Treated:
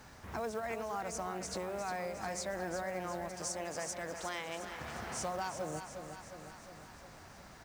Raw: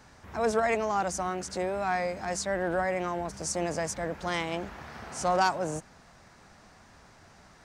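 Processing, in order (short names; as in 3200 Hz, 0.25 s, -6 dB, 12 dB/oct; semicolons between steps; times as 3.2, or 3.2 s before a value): 3.28–4.8 low shelf 410 Hz -10.5 dB; compressor 5:1, threshold -37 dBFS, peak gain reduction 15 dB; companded quantiser 6-bit; feedback echo 0.358 s, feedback 59%, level -8.5 dB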